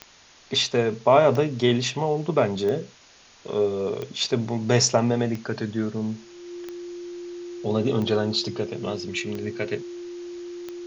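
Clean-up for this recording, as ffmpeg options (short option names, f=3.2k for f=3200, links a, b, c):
-af "adeclick=t=4,bandreject=f=350:w=30,afwtdn=0.004"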